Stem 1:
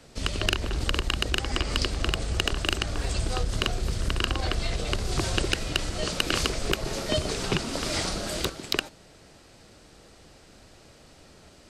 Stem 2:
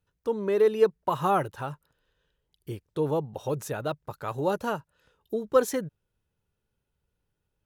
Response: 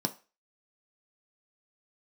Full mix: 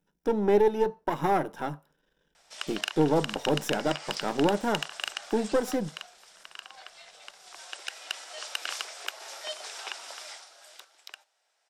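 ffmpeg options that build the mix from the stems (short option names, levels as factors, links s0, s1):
-filter_complex "[0:a]highpass=f=720:w=0.5412,highpass=f=720:w=1.3066,adelay=2350,volume=1.19,afade=t=out:st=5.33:d=0.79:silence=0.354813,afade=t=in:st=7.56:d=0.57:silence=0.398107,afade=t=out:st=10.04:d=0.38:silence=0.266073,asplit=2[s0][s1];[s1]volume=0.168[s2];[1:a]aeval=exprs='if(lt(val(0),0),0.251*val(0),val(0))':c=same,alimiter=limit=0.119:level=0:latency=1:release=418,volume=1.12,asplit=2[s3][s4];[s4]volume=0.447[s5];[2:a]atrim=start_sample=2205[s6];[s2][s5]amix=inputs=2:normalize=0[s7];[s7][s6]afir=irnorm=-1:irlink=0[s8];[s0][s3][s8]amix=inputs=3:normalize=0"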